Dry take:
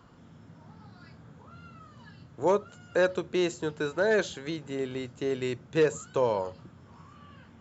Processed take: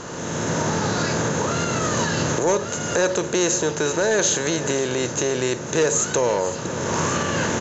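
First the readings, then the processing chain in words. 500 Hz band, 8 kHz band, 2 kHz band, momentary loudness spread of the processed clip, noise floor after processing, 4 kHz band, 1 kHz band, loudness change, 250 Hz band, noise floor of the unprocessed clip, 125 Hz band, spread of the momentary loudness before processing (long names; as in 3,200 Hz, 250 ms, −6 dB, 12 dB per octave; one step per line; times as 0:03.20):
+7.0 dB, can't be measured, +10.0 dB, 5 LU, −30 dBFS, +14.5 dB, +11.0 dB, +7.5 dB, +9.5 dB, −54 dBFS, +14.0 dB, 8 LU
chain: compressor on every frequency bin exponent 0.6
camcorder AGC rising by 24 dB per second
in parallel at −1 dB: brickwall limiter −20.5 dBFS, peak gain reduction 10.5 dB
on the sum: soft clipping −10 dBFS, distortion −24 dB
pitch vibrato 0.73 Hz 10 cents
low-pass with resonance 6,400 Hz, resonance Q 8.8
on a send: single-tap delay 511 ms −15 dB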